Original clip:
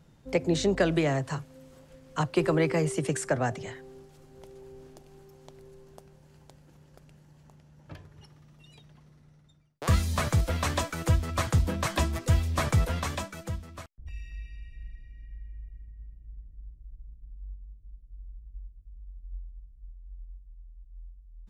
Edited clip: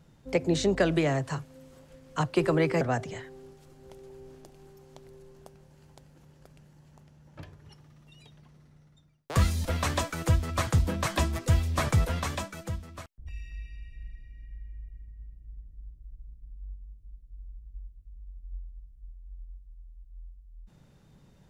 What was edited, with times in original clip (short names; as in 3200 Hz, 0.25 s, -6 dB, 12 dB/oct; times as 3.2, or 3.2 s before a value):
2.81–3.33 cut
10.17–10.45 cut